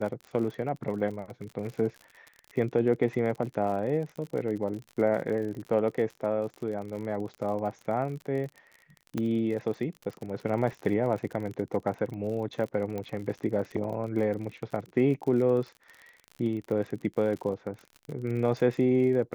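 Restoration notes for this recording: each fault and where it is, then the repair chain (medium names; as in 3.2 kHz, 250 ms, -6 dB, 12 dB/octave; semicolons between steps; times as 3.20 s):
crackle 46 per s -36 dBFS
9.18 s: pop -18 dBFS
12.98 s: pop -22 dBFS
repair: de-click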